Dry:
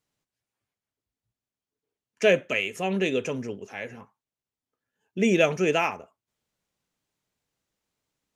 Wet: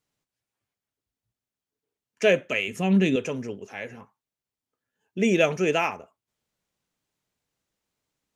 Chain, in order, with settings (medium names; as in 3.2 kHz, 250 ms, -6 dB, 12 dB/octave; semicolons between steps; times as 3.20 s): 2.68–3.16 s: resonant low shelf 330 Hz +7.5 dB, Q 1.5